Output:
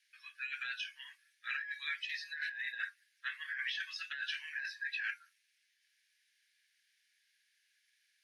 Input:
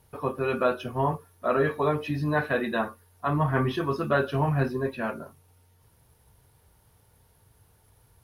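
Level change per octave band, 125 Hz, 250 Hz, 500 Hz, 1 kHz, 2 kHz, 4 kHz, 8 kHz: under -40 dB, under -40 dB, under -40 dB, -26.0 dB, -3.5 dB, +1.0 dB, n/a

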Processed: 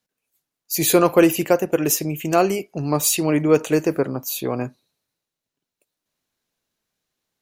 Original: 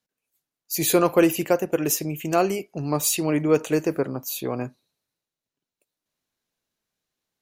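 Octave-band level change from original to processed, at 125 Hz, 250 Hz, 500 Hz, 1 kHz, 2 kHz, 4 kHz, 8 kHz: +3.5, +3.5, +3.5, +3.5, +3.5, +3.5, +3.5 dB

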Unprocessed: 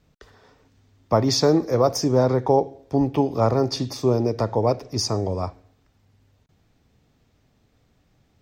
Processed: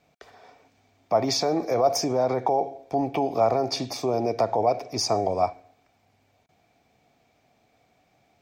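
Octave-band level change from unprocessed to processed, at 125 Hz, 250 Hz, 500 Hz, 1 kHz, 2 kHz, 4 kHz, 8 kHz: -11.5, -7.0, -2.5, +1.5, -0.5, -2.0, -1.5 dB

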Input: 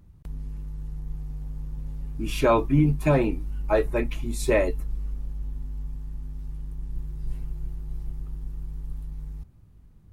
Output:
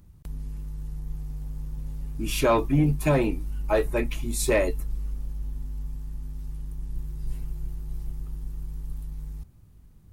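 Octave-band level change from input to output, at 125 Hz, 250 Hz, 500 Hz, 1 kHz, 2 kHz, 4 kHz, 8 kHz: -1.0, -1.0, -1.0, -1.0, +0.5, +3.0, +6.5 dB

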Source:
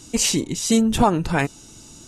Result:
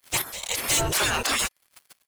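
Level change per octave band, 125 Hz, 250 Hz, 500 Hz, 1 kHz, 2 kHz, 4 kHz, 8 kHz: -9.0, -18.5, -8.5, -6.5, +2.0, +0.5, -1.0 dB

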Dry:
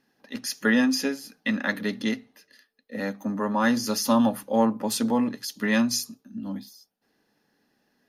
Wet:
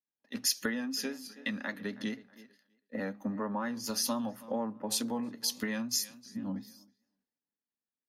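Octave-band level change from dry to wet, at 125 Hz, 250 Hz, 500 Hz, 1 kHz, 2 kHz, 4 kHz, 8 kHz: -9.0, -11.5, -10.5, -11.5, -11.0, -3.5, -2.0 dB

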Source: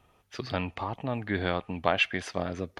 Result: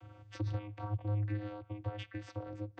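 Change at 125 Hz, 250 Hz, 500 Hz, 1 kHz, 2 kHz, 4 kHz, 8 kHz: +0.5 dB, -9.0 dB, -14.0 dB, -15.5 dB, -21.0 dB, -20.0 dB, under -15 dB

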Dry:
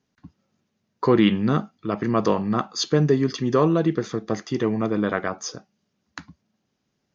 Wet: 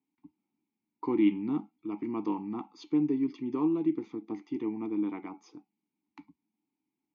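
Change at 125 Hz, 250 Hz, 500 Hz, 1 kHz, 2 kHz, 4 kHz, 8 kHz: -19.5 dB, -6.5 dB, -14.5 dB, -14.5 dB, under -15 dB, under -20 dB, n/a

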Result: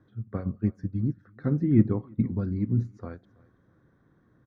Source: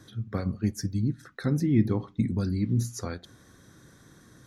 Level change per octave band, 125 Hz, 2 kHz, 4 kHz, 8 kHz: +0.5 dB, n/a, under -20 dB, under -30 dB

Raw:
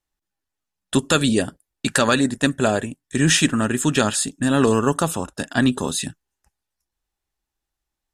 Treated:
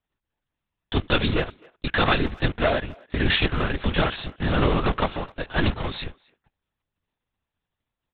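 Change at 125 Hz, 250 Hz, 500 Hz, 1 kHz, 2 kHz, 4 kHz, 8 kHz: -1.5 dB, -8.0 dB, -4.0 dB, -2.0 dB, -2.0 dB, -3.0 dB, under -40 dB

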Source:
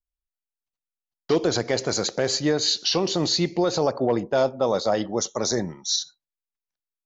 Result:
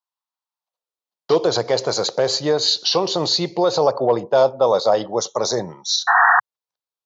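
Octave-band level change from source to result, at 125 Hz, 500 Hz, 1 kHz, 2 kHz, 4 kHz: -0.5, +6.0, +11.0, +13.5, +4.5 dB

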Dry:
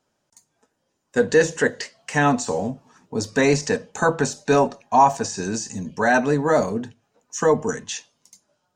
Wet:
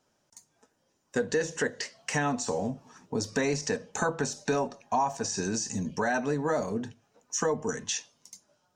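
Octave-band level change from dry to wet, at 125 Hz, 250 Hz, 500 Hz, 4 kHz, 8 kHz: -8.0, -8.0, -9.5, -4.5, -3.0 dB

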